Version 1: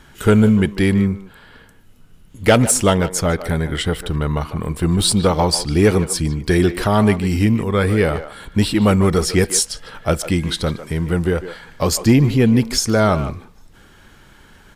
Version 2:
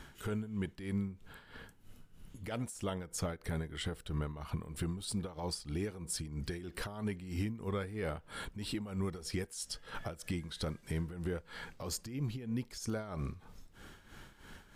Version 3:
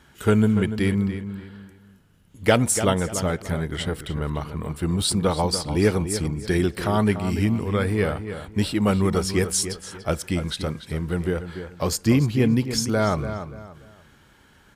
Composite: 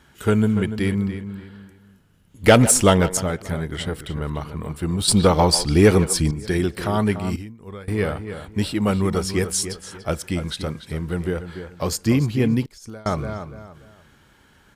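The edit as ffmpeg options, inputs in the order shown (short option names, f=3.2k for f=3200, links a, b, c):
-filter_complex "[0:a]asplit=2[a][b];[1:a]asplit=2[c][d];[2:a]asplit=5[e][f][g][h][i];[e]atrim=end=2.442[j];[a]atrim=start=2.438:end=3.172[k];[f]atrim=start=3.168:end=5.082[l];[b]atrim=start=5.078:end=6.312[m];[g]atrim=start=6.308:end=7.362[n];[c]atrim=start=7.358:end=7.882[o];[h]atrim=start=7.878:end=12.662[p];[d]atrim=start=12.658:end=13.062[q];[i]atrim=start=13.058[r];[j][k]acrossfade=d=0.004:c1=hsin:c2=hsin[s];[s][l]acrossfade=d=0.004:c1=hsin:c2=hsin[t];[t][m]acrossfade=d=0.004:c1=hsin:c2=hsin[u];[u][n]acrossfade=d=0.004:c1=hsin:c2=hsin[v];[v][o]acrossfade=d=0.004:c1=hsin:c2=hsin[w];[w][p]acrossfade=d=0.004:c1=hsin:c2=hsin[x];[x][q]acrossfade=d=0.004:c1=hsin:c2=hsin[y];[y][r]acrossfade=d=0.004:c1=hsin:c2=hsin"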